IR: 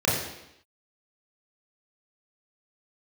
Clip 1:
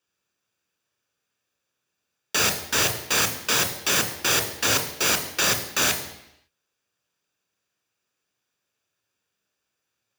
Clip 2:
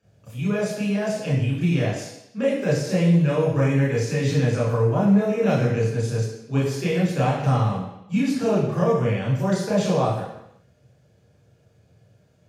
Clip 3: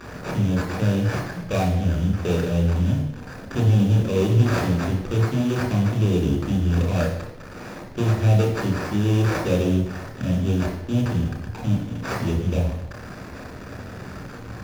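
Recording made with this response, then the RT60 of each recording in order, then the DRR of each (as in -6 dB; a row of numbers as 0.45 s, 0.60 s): 2; 0.85 s, 0.85 s, 0.85 s; 6.5 dB, -7.5 dB, 0.5 dB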